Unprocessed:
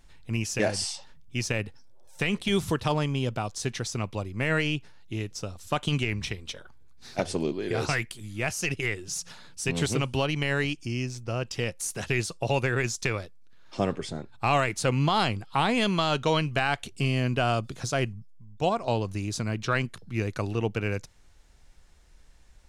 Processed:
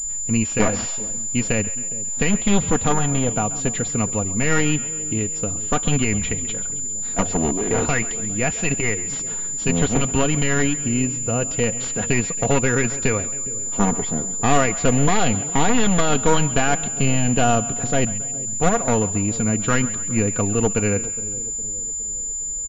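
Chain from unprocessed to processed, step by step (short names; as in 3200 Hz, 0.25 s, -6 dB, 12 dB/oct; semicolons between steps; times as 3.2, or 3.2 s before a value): one-sided fold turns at -26.5 dBFS; low shelf 430 Hz +6 dB; comb 4.2 ms, depth 48%; split-band echo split 580 Hz, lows 0.412 s, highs 0.135 s, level -16 dB; pulse-width modulation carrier 7100 Hz; gain +5 dB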